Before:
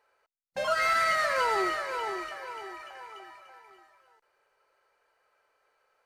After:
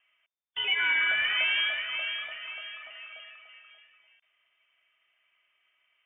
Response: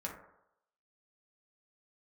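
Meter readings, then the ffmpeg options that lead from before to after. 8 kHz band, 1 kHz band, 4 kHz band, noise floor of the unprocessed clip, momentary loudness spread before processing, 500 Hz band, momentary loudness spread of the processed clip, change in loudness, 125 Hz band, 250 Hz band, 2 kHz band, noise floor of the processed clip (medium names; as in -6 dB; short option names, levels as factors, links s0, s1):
under -35 dB, -14.5 dB, +10.5 dB, -74 dBFS, 20 LU, -18.0 dB, 19 LU, +1.0 dB, no reading, under -15 dB, +4.5 dB, -75 dBFS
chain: -af "lowpass=f=3100:t=q:w=0.5098,lowpass=f=3100:t=q:w=0.6013,lowpass=f=3100:t=q:w=0.9,lowpass=f=3100:t=q:w=2.563,afreqshift=-3600"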